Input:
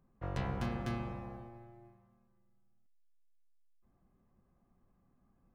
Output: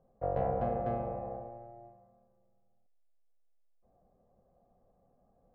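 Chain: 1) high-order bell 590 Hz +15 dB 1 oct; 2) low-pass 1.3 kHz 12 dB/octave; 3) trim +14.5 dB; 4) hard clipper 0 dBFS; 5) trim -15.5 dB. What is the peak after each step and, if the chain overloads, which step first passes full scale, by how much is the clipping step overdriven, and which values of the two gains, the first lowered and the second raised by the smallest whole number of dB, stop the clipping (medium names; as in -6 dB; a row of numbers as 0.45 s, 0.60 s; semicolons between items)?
-19.0 dBFS, -19.0 dBFS, -4.5 dBFS, -4.5 dBFS, -20.0 dBFS; nothing clips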